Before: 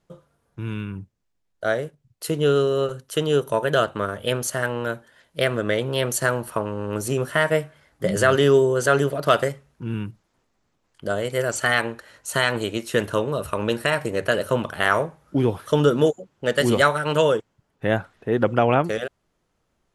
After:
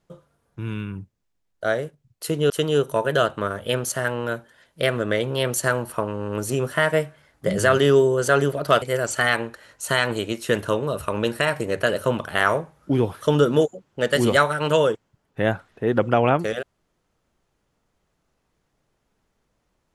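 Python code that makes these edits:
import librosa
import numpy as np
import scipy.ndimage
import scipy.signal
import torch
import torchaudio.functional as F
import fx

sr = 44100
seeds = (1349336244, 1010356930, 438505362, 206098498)

y = fx.edit(x, sr, fx.cut(start_s=2.5, length_s=0.58),
    fx.cut(start_s=9.4, length_s=1.87), tone=tone)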